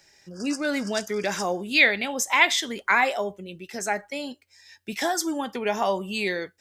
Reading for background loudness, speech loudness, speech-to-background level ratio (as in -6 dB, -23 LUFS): -39.5 LUFS, -24.5 LUFS, 15.0 dB